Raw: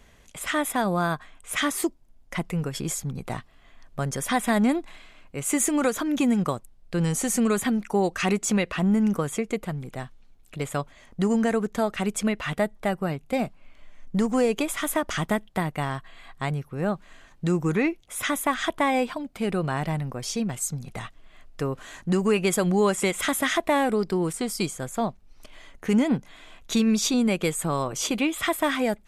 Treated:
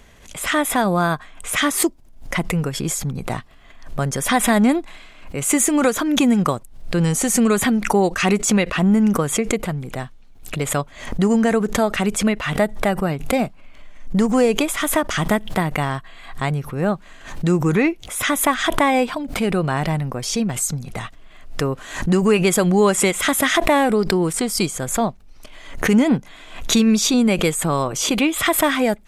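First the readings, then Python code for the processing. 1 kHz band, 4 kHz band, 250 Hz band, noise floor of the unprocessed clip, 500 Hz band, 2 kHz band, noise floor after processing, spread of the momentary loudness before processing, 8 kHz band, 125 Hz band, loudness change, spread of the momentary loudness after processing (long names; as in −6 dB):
+6.5 dB, +8.0 dB, +6.0 dB, −53 dBFS, +6.0 dB, +7.0 dB, −44 dBFS, 11 LU, +8.0 dB, +6.5 dB, +6.5 dB, 11 LU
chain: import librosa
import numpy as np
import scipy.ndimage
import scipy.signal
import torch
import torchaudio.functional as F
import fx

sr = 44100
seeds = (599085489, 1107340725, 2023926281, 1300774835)

y = fx.pre_swell(x, sr, db_per_s=95.0)
y = y * 10.0 ** (6.0 / 20.0)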